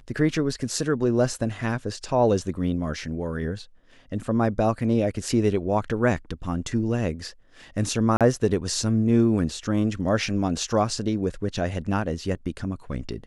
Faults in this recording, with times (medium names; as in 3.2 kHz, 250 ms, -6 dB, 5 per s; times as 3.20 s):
8.17–8.21 s: dropout 37 ms